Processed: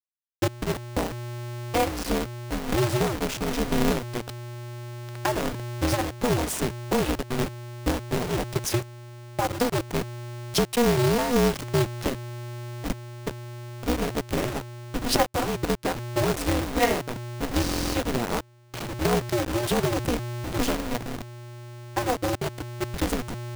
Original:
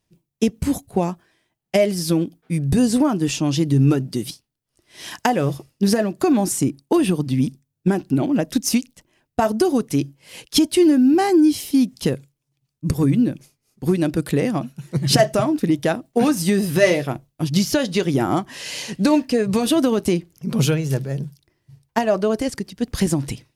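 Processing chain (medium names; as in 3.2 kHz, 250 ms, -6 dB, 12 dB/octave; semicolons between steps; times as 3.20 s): send-on-delta sampling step -19.5 dBFS; buffer glitch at 12.94/17.62 s, samples 1024, times 13; polarity switched at an audio rate 120 Hz; trim -6.5 dB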